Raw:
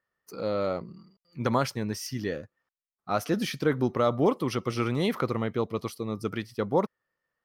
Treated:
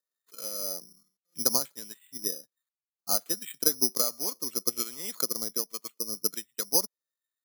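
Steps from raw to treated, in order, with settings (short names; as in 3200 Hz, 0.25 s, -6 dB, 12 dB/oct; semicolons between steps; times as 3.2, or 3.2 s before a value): HPF 190 Hz 24 dB/oct; high shelf 5500 Hz +11.5 dB; transient shaper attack +10 dB, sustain -2 dB; harmonic tremolo 1.3 Hz, crossover 1100 Hz; careless resampling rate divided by 8×, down filtered, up zero stuff; gain -13 dB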